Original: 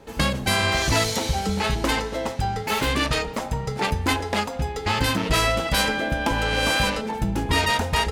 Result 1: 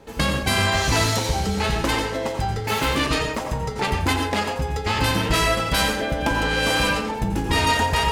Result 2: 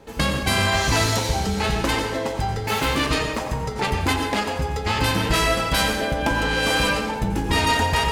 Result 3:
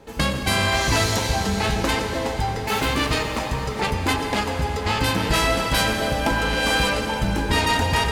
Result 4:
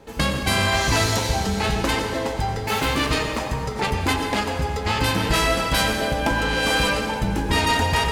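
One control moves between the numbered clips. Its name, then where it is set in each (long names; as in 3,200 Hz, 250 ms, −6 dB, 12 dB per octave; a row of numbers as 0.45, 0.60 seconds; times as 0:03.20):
dense smooth reverb, RT60: 0.52, 1.1, 5.3, 2.3 seconds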